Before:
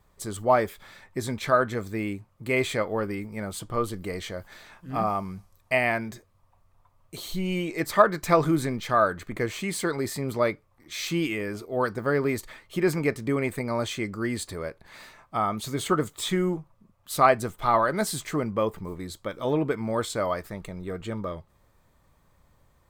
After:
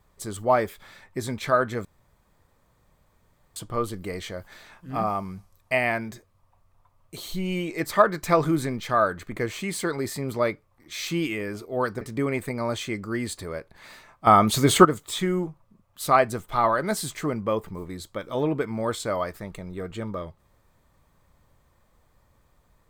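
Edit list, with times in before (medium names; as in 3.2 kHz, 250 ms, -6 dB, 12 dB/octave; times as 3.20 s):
1.85–3.56 s: room tone
12.01–13.11 s: delete
15.37–15.95 s: gain +10.5 dB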